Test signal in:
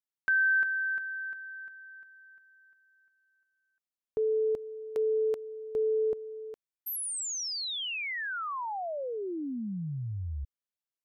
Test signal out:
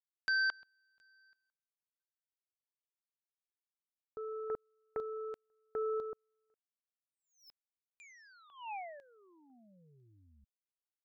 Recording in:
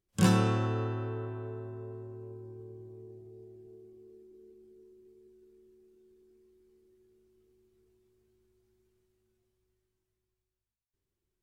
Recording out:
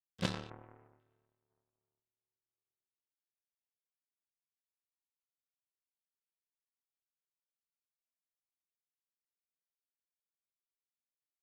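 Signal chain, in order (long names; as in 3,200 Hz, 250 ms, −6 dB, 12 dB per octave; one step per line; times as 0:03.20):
auto-filter low-pass square 1 Hz 860–4,200 Hz
power curve on the samples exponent 3
level −3 dB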